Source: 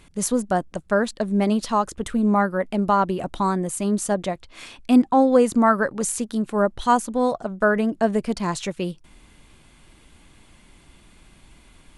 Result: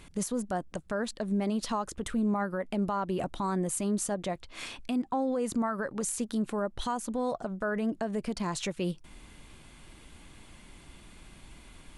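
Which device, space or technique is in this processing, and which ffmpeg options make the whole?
stacked limiters: -af "alimiter=limit=-11.5dB:level=0:latency=1:release=181,alimiter=limit=-18dB:level=0:latency=1:release=363,alimiter=limit=-22.5dB:level=0:latency=1:release=79"

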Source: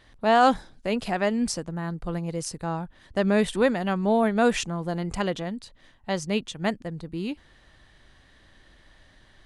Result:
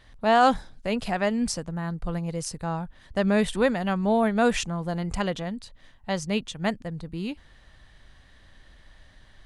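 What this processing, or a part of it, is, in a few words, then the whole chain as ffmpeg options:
low shelf boost with a cut just above: -af "lowshelf=frequency=85:gain=6,equalizer=frequency=340:width_type=o:width=0.63:gain=-4.5"

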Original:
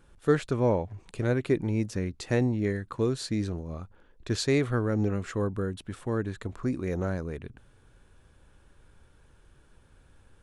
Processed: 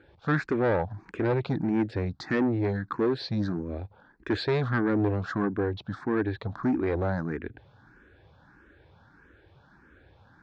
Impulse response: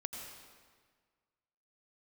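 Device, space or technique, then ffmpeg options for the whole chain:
barber-pole phaser into a guitar amplifier: -filter_complex "[0:a]asplit=2[link_01][link_02];[link_02]afreqshift=1.6[link_03];[link_01][link_03]amix=inputs=2:normalize=1,asoftclip=type=tanh:threshold=-28.5dB,highpass=81,equalizer=frequency=310:width_type=q:width=4:gain=5,equalizer=frequency=800:width_type=q:width=4:gain=4,equalizer=frequency=1600:width_type=q:width=4:gain=7,equalizer=frequency=2900:width_type=q:width=4:gain=-7,lowpass=frequency=4300:width=0.5412,lowpass=frequency=4300:width=1.3066,volume=7dB"

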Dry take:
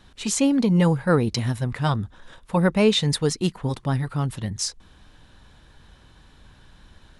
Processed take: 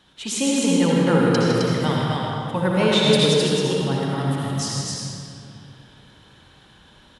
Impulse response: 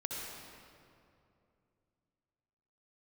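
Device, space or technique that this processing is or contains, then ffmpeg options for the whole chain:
stadium PA: -filter_complex "[0:a]highpass=frequency=190:poles=1,equalizer=frequency=3200:width_type=o:width=0.27:gain=7.5,aecho=1:1:157.4|262.4:0.355|0.708[link_01];[1:a]atrim=start_sample=2205[link_02];[link_01][link_02]afir=irnorm=-1:irlink=0"

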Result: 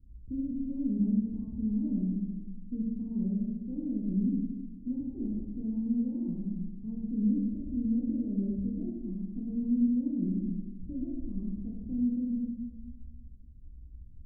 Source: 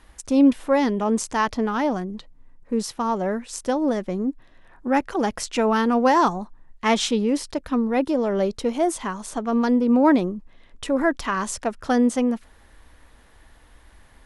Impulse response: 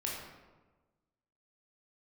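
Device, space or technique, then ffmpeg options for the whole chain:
club heard from the street: -filter_complex "[0:a]alimiter=limit=-17dB:level=0:latency=1,lowpass=frequency=210:width=0.5412,lowpass=frequency=210:width=1.3066[link_01];[1:a]atrim=start_sample=2205[link_02];[link_01][link_02]afir=irnorm=-1:irlink=0"

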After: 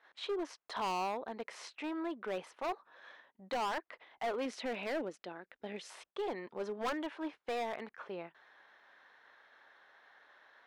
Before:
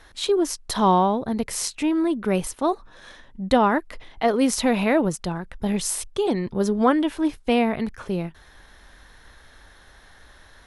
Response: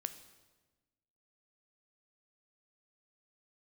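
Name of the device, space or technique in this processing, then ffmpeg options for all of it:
walkie-talkie: -filter_complex "[0:a]asettb=1/sr,asplit=3[link_01][link_02][link_03];[link_01]atrim=end=4.454[link_04];[link_02]atrim=start=4.45:end=5.9,asetpts=PTS-STARTPTS,afade=type=in:duration=0.004:curve=qsin,afade=type=out:start_time=1.446:duration=0.004:curve=qsin,equalizer=frequency=125:width_type=o:width=1:gain=-9,equalizer=frequency=250:width_type=o:width=1:gain=5,equalizer=frequency=1000:width_type=o:width=1:gain=-10[link_05];[link_03]atrim=start=5.896[link_06];[link_04][link_05]acrossfade=duration=0.004:curve1=hsin:curve2=qsin[link_07];[link_07][link_06]acrossfade=duration=0.004:curve1=qsin:curve2=hsin,highpass=560,lowpass=2500,asoftclip=type=hard:threshold=-24.5dB,agate=range=-7dB:threshold=-56dB:ratio=16:detection=peak,volume=-7.5dB"

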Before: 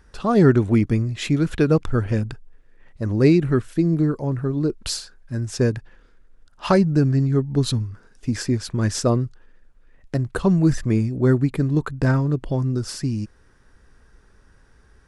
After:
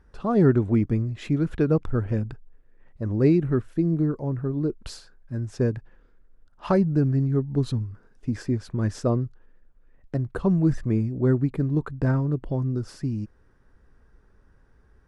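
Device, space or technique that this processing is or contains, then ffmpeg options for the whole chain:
through cloth: -af "highshelf=frequency=2200:gain=-13,volume=-3.5dB"

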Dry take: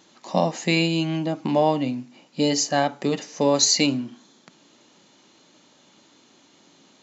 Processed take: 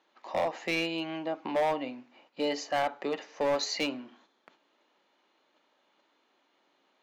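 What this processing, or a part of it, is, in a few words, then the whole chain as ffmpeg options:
walkie-talkie: -af "highpass=490,lowpass=2500,asoftclip=type=hard:threshold=-20.5dB,agate=range=-7dB:threshold=-59dB:ratio=16:detection=peak,volume=-2.5dB"

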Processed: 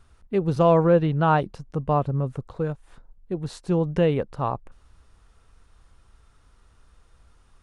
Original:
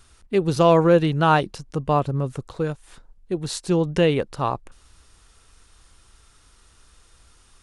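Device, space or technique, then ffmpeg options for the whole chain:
through cloth: -filter_complex "[0:a]highshelf=frequency=2200:gain=-15,asettb=1/sr,asplit=3[link_01][link_02][link_03];[link_01]atrim=end=0.854[link_04];[link_02]atrim=start=0.85:end=1.38,asetpts=PTS-STARTPTS,afade=type=in:duration=0.004:curve=qsin,afade=type=out:start_time=0.526:duration=0.004:curve=qsin,lowpass=6000[link_05];[link_03]atrim=start=1.376[link_06];[link_04][link_05]acrossfade=duration=0.004:curve1=hsin:curve2=qsin[link_07];[link_07][link_06]acrossfade=duration=0.004:curve1=qsin:curve2=hsin,equalizer=frequency=340:width_type=o:width=0.69:gain=-4"

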